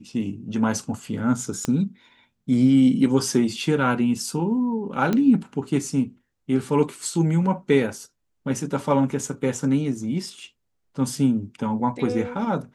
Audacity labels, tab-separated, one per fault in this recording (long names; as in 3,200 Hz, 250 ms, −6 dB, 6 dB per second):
1.650000	1.650000	click −12 dBFS
5.130000	5.130000	click −11 dBFS